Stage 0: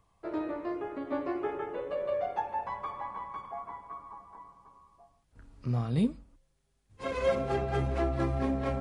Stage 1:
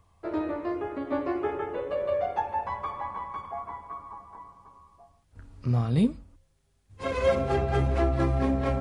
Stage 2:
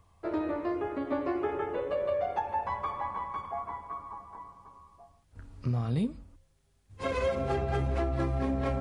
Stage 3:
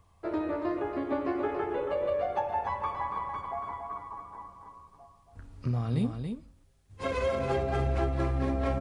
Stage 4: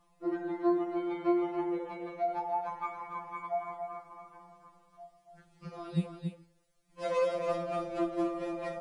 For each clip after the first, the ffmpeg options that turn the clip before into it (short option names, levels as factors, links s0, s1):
-af "equalizer=f=85:w=5.1:g=14,volume=1.58"
-af "acompressor=threshold=0.0501:ratio=5"
-af "aecho=1:1:280:0.473"
-af "afftfilt=real='re*2.83*eq(mod(b,8),0)':imag='im*2.83*eq(mod(b,8),0)':win_size=2048:overlap=0.75"